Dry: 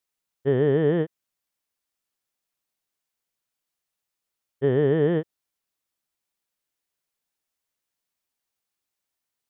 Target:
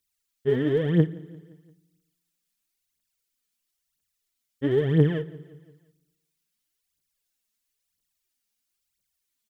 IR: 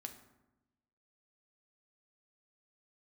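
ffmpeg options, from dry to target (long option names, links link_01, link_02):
-filter_complex "[0:a]equalizer=frequency=720:width_type=o:width=2.3:gain=-12.5,aphaser=in_gain=1:out_gain=1:delay=5:decay=0.71:speed=1:type=triangular,aecho=1:1:173|346|519|692:0.0794|0.0429|0.0232|0.0125,asplit=2[link_01][link_02];[1:a]atrim=start_sample=2205,asetrate=37926,aresample=44100[link_03];[link_02][link_03]afir=irnorm=-1:irlink=0,volume=-7dB[link_04];[link_01][link_04]amix=inputs=2:normalize=0"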